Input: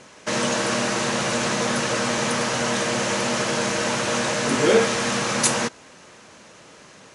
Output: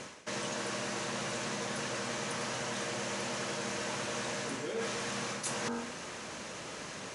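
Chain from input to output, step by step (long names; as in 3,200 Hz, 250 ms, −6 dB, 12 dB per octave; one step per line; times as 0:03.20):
hum removal 47.17 Hz, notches 35
reversed playback
downward compressor 16 to 1, threshold −38 dBFS, peak gain reduction 26 dB
reversed playback
level +4.5 dB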